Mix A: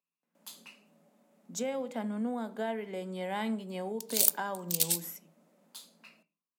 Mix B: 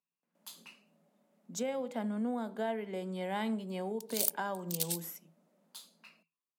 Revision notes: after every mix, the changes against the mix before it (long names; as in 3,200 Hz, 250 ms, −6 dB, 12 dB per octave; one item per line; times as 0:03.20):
background −4.0 dB
reverb: off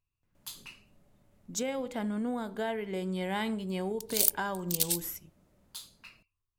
master: remove Chebyshev high-pass with heavy ripple 160 Hz, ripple 6 dB